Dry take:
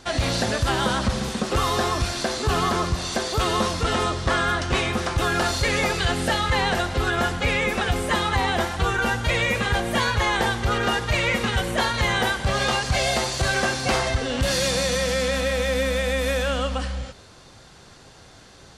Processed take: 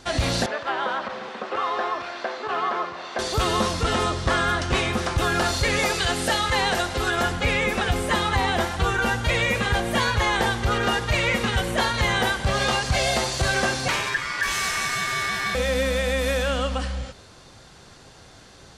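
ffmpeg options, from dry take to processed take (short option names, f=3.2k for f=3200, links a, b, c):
-filter_complex "[0:a]asettb=1/sr,asplit=3[a][b][c];[a]atrim=end=0.464[d];[b]atrim=start=0.46:end=3.19,asetpts=PTS-STARTPTS,afade=t=in:d=0.004:c=qsin,afade=t=out:st=2.726:d=0.004:c=qsin,highpass=520,lowpass=2.2k[e];[c]atrim=start=3.186[f];[d][e]acrossfade=d=0.004:c1=hsin:c2=qsin[g];[g][f]acrossfade=d=0.004:c1=qsin:c2=hsin,asettb=1/sr,asplit=3[h][i][j];[h]atrim=end=5.794[k];[i]atrim=start=5.79:end=7.23,asetpts=PTS-STARTPTS,afade=t=in:d=0.004:c=qsin,afade=t=out:st=1.436:d=0.004:c=qsin,bass=f=250:g=-5,treble=f=4k:g=4[l];[j]atrim=start=7.226[m];[k][l]acrossfade=d=0.004:c1=hsin:c2=qsin[n];[n][m]acrossfade=d=0.004:c1=qsin:c2=hsin,asettb=1/sr,asplit=3[o][p][q];[o]atrim=end=13.884[r];[p]atrim=start=13.88:end=15.55,asetpts=PTS-STARTPTS,afade=t=in:d=0.004:c=qsin,afade=t=out:st=1.666:d=0.004:c=qsin,aeval=exprs='val(0)*sin(2*PI*1700*n/s)':c=same[s];[q]atrim=start=15.546[t];[r][s]acrossfade=d=0.004:c1=hsin:c2=qsin[u];[u][t]acrossfade=d=0.004:c1=qsin:c2=hsin"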